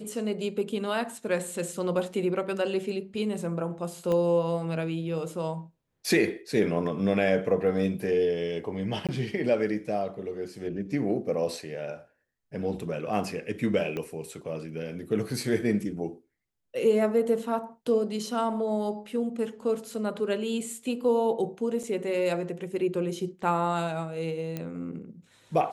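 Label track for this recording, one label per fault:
4.120000	4.120000	pop -18 dBFS
9.070000	9.090000	gap 17 ms
13.970000	13.970000	pop -20 dBFS
21.830000	21.840000	gap 5.7 ms
24.570000	24.570000	pop -19 dBFS

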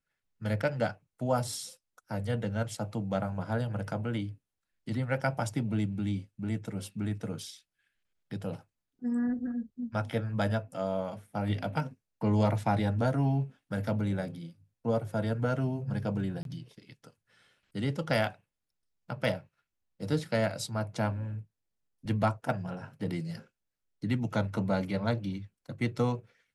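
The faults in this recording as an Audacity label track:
16.430000	16.450000	gap 22 ms

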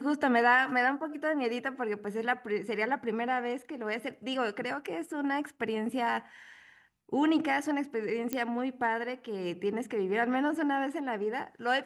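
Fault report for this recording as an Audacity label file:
8.330000	8.330000	pop -16 dBFS

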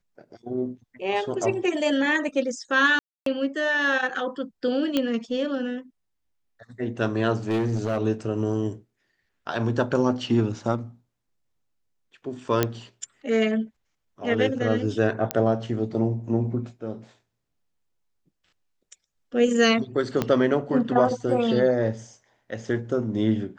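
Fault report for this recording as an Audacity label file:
2.990000	3.260000	gap 0.273 s
4.970000	4.970000	pop -10 dBFS
7.480000	7.980000	clipped -20.5 dBFS
12.630000	12.630000	pop -6 dBFS
15.310000	15.310000	pop -7 dBFS
20.220000	20.220000	pop -10 dBFS

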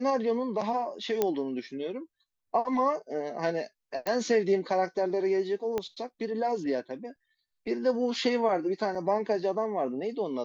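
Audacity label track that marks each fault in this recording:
1.220000	1.220000	pop -12 dBFS
4.070000	4.070000	pop -16 dBFS
5.780000	5.780000	pop -17 dBFS
8.950000	8.950000	gap 4.9 ms

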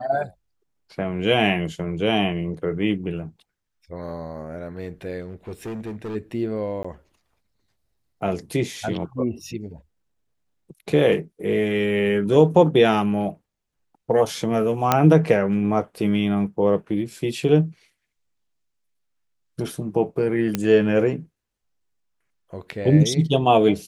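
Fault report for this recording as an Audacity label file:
5.200000	6.160000	clipped -28 dBFS
6.830000	6.840000	gap 15 ms
14.920000	14.920000	pop -2 dBFS
20.550000	20.550000	pop -8 dBFS

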